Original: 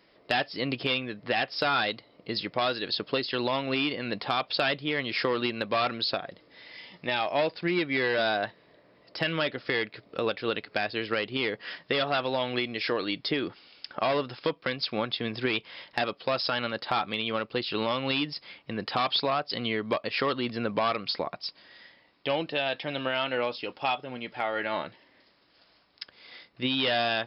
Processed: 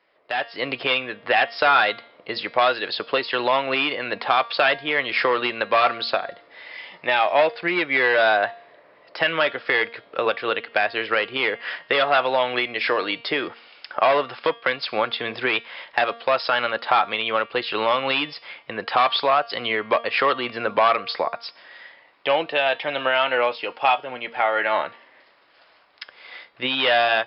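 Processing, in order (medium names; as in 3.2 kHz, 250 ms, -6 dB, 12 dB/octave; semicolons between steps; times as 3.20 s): three-band isolator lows -16 dB, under 470 Hz, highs -16 dB, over 3.1 kHz; de-hum 232.9 Hz, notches 27; level rider gain up to 11 dB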